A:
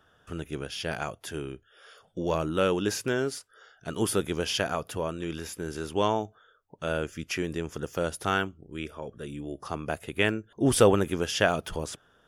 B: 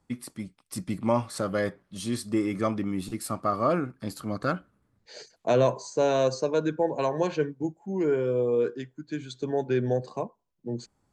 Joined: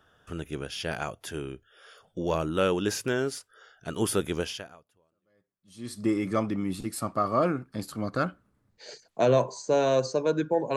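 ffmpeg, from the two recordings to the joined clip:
-filter_complex "[0:a]apad=whole_dur=10.76,atrim=end=10.76,atrim=end=5.99,asetpts=PTS-STARTPTS[a];[1:a]atrim=start=0.69:end=7.04,asetpts=PTS-STARTPTS[b];[a][b]acrossfade=d=1.58:c1=exp:c2=exp"

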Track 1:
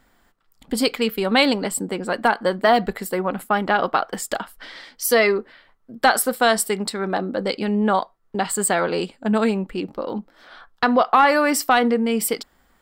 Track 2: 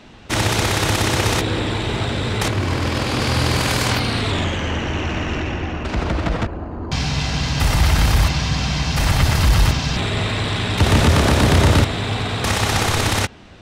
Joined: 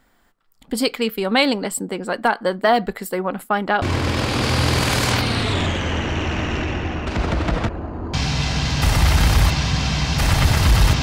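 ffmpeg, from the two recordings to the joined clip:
-filter_complex "[0:a]apad=whole_dur=11.02,atrim=end=11.02,atrim=end=3.822[a];[1:a]atrim=start=2.598:end=9.8[b];[a][b]acrossfade=d=0.004:c1=hsin:c2=hsin"

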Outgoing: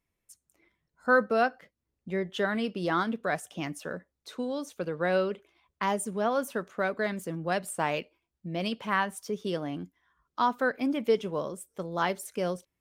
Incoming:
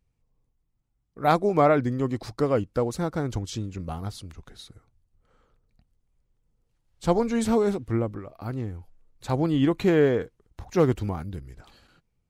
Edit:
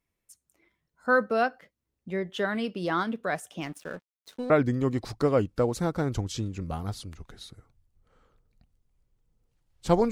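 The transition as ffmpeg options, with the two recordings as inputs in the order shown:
-filter_complex "[0:a]asettb=1/sr,asplit=3[a][b][c];[a]atrim=end=3.614[d];[b]atrim=start=3.61:end=4.5,asetpts=PTS-STARTPTS,afade=t=in:d=0.004:c=qsin,afade=t=out:st=0.886:d=0.004:c=qsin,aeval=exprs='sgn(val(0))*max(abs(val(0))-0.00398,0)':c=same[e];[c]atrim=start=4.496[f];[d][e]acrossfade=d=0.004:c1=hsin:c2=qsin[g];[g][f]acrossfade=d=0.004:c1=qsin:c2=hsin,apad=whole_dur=10.11,atrim=end=10.11,atrim=end=4.502[h];[1:a]atrim=start=1.678:end=7.29[i];[h][i]acrossfade=d=0.004:c1=hsin:c2=hsin"

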